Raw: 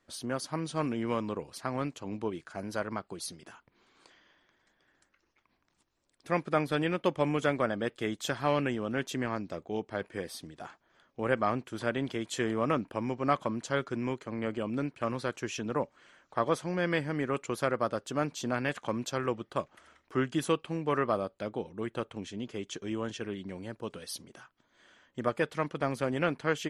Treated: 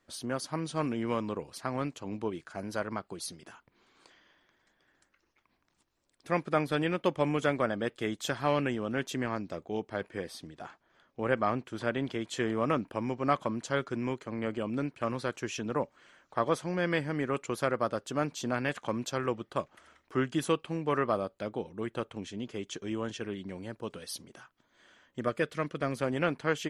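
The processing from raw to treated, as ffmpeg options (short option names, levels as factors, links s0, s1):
-filter_complex "[0:a]asettb=1/sr,asplit=3[s0][s1][s2];[s0]atrim=end=10.104[s3];[s1]atrim=start=10.1:end=12.54,asetpts=PTS-STARTPTS,afade=t=in:d=0.004:c=qsin,afade=t=out:st=2.436:d=0.004:c=qsin,highshelf=f=9700:g=-10[s4];[s2]atrim=start=12.536[s5];[s3][s4]acrossfade=d=0.004:c1=hsin:c2=qsin[s6];[s6][s5]acrossfade=d=0.004:c1=qsin:c2=hsin,asettb=1/sr,asplit=3[s7][s8][s9];[s7]atrim=end=25.224[s10];[s8]atrim=start=25.22:end=25.95,asetpts=PTS-STARTPTS,afade=t=in:d=0.004:c=qsin,afade=t=out:st=0.726:d=0.004:c=qsin,equalizer=f=860:w=4.7:g=-12[s11];[s9]atrim=start=25.946[s12];[s10][s11]acrossfade=d=0.004:c1=hsin:c2=qsin[s13];[s13][s12]acrossfade=d=0.004:c1=qsin:c2=hsin"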